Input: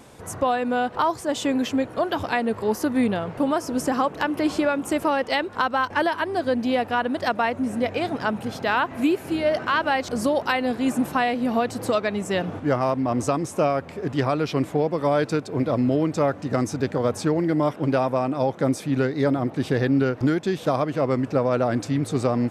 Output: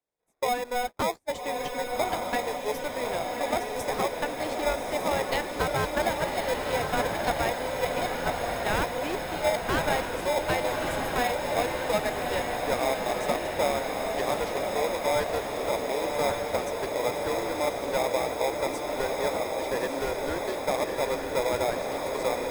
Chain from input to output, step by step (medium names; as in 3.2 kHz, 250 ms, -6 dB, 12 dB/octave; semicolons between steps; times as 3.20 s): gate -25 dBFS, range -36 dB; high-pass 460 Hz 24 dB/octave; treble shelf 12 kHz +8.5 dB; in parallel at +1 dB: sample-and-hold 30×; on the sum: echo that smears into a reverb 1177 ms, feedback 69%, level -3 dB; trim -8.5 dB